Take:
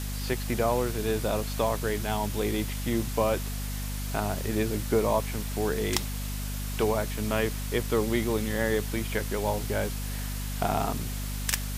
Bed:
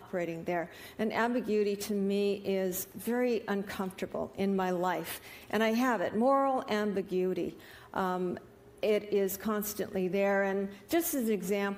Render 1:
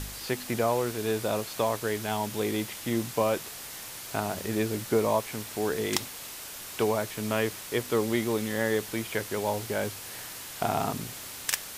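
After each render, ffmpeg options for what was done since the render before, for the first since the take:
-af "bandreject=f=50:t=h:w=4,bandreject=f=100:t=h:w=4,bandreject=f=150:t=h:w=4,bandreject=f=200:t=h:w=4,bandreject=f=250:t=h:w=4"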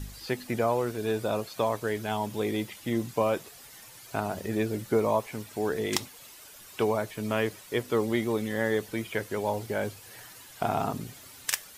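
-af "afftdn=nr=11:nf=-41"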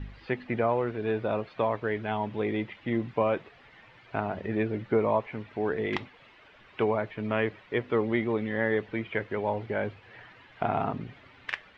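-af "lowpass=f=2900:w=0.5412,lowpass=f=2900:w=1.3066,equalizer=f=2000:t=o:w=0.43:g=3"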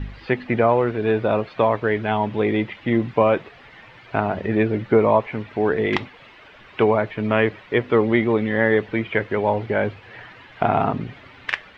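-af "volume=2.82"

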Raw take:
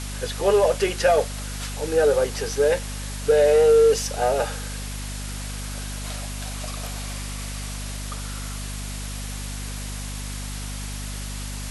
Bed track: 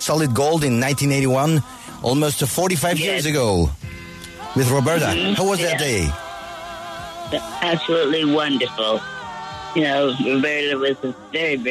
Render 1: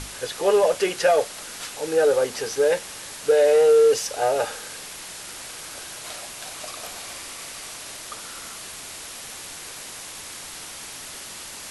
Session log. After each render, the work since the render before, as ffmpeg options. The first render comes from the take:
-af "bandreject=f=50:t=h:w=6,bandreject=f=100:t=h:w=6,bandreject=f=150:t=h:w=6,bandreject=f=200:t=h:w=6,bandreject=f=250:t=h:w=6"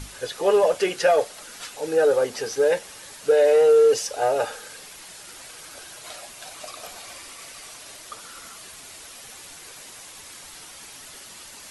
-af "afftdn=nr=7:nf=-38"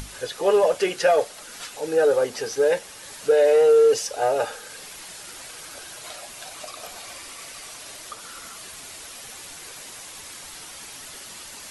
-af "acompressor=mode=upward:threshold=0.02:ratio=2.5"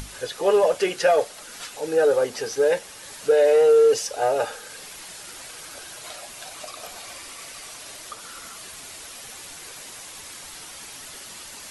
-af anull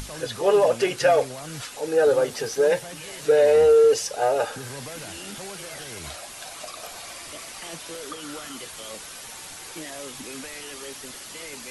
-filter_complex "[1:a]volume=0.0891[s0];[0:a][s0]amix=inputs=2:normalize=0"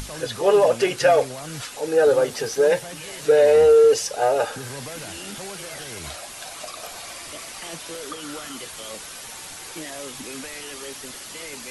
-af "volume=1.26"

